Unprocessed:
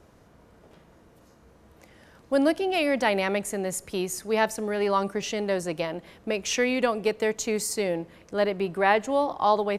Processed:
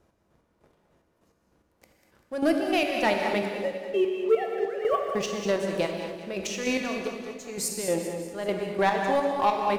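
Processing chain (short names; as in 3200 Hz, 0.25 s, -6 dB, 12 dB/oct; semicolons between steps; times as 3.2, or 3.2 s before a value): 3.45–5.09 sine-wave speech; sample leveller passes 2; chopper 3.3 Hz, depth 65%, duty 35%; 6.85–7.64 dip -17 dB, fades 0.36 s linear; split-band echo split 570 Hz, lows 0.298 s, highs 0.195 s, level -10 dB; non-linear reverb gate 0.28 s flat, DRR 3 dB; gain -6.5 dB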